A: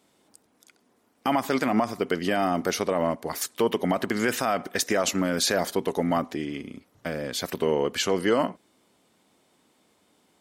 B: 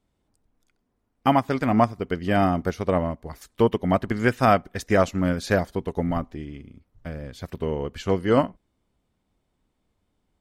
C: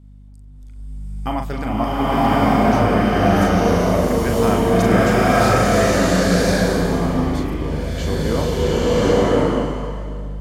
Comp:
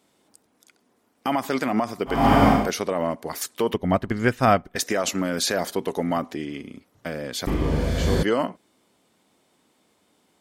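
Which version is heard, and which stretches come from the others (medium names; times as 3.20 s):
A
2.17–2.59 s: from C, crossfade 0.24 s
3.74–4.76 s: from B
7.47–8.23 s: from C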